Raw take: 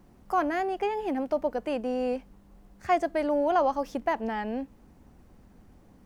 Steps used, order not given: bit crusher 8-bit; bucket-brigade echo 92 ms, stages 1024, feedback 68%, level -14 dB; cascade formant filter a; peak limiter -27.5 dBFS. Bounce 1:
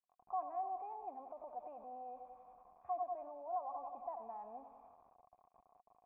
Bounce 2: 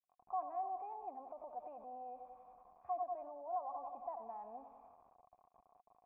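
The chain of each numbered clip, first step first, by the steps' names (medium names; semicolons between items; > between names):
bucket-brigade echo > peak limiter > bit crusher > cascade formant filter; bucket-brigade echo > bit crusher > peak limiter > cascade formant filter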